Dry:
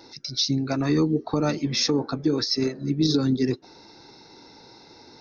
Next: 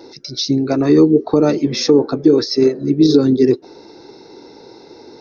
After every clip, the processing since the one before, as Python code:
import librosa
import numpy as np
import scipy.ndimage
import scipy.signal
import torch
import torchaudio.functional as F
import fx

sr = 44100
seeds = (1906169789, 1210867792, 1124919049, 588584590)

y = fx.peak_eq(x, sr, hz=410.0, db=12.5, octaves=1.3)
y = F.gain(torch.from_numpy(y), 2.5).numpy()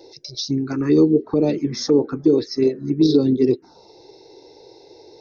y = fx.env_phaser(x, sr, low_hz=210.0, high_hz=1900.0, full_db=-6.5)
y = F.gain(torch.from_numpy(y), -3.5).numpy()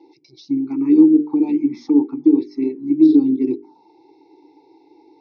y = fx.vowel_filter(x, sr, vowel='u')
y = fx.hum_notches(y, sr, base_hz=50, count=9)
y = F.gain(torch.from_numpy(y), 8.0).numpy()